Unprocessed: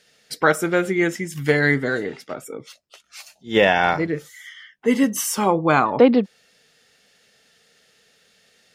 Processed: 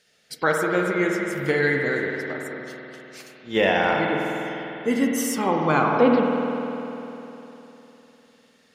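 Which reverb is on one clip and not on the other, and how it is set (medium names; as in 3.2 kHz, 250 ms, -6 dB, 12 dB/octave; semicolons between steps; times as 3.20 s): spring tank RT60 3.4 s, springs 50 ms, chirp 50 ms, DRR 0 dB; trim -5 dB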